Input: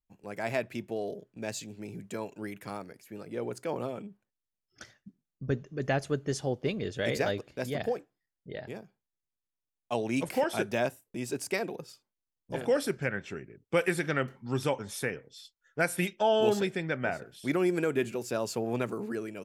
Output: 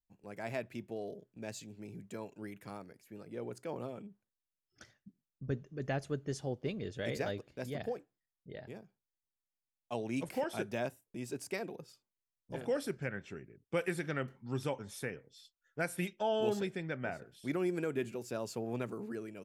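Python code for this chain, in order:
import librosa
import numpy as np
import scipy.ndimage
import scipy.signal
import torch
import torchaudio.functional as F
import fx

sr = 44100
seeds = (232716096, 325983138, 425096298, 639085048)

y = fx.low_shelf(x, sr, hz=330.0, db=4.0)
y = F.gain(torch.from_numpy(y), -8.5).numpy()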